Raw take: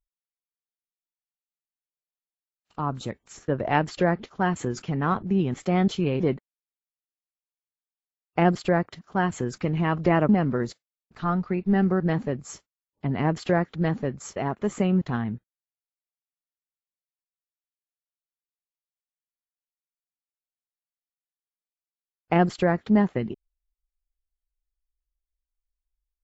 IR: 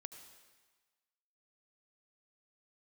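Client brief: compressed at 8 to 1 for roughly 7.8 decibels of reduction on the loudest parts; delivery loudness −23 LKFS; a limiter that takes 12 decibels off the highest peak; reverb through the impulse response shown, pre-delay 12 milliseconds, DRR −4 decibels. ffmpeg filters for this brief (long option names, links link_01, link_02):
-filter_complex "[0:a]acompressor=threshold=-23dB:ratio=8,alimiter=limit=-23.5dB:level=0:latency=1,asplit=2[link_01][link_02];[1:a]atrim=start_sample=2205,adelay=12[link_03];[link_02][link_03]afir=irnorm=-1:irlink=0,volume=9dB[link_04];[link_01][link_04]amix=inputs=2:normalize=0,volume=6dB"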